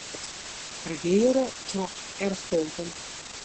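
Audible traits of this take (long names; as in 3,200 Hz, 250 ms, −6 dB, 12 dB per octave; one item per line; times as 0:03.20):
phaser sweep stages 2, 0.88 Hz, lowest notch 460–1,800 Hz
a quantiser's noise floor 6 bits, dither triangular
Opus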